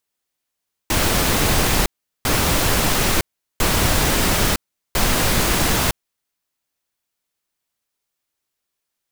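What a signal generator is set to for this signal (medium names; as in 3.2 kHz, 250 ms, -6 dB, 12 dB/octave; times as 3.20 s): noise bursts pink, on 0.96 s, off 0.39 s, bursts 4, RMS -17.5 dBFS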